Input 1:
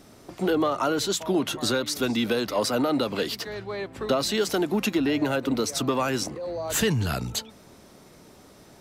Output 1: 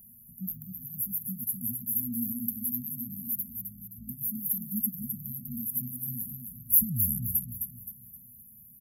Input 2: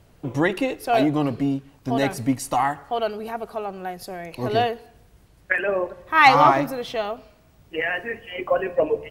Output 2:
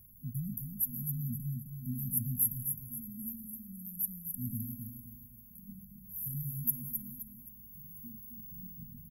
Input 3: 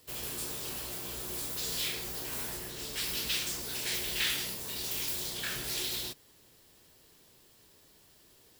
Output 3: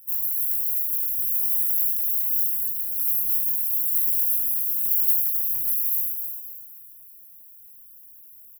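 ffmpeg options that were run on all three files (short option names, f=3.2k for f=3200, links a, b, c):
-filter_complex "[0:a]asplit=2[a][b];[b]aecho=0:1:261|522|783|1044|1305:0.473|0.189|0.0757|0.0303|0.0121[c];[a][c]amix=inputs=2:normalize=0,crystalizer=i=8.5:c=0,afftfilt=real='re*(1-between(b*sr/4096,250,11000))':imag='im*(1-between(b*sr/4096,250,11000))':win_size=4096:overlap=0.75,volume=-7.5dB"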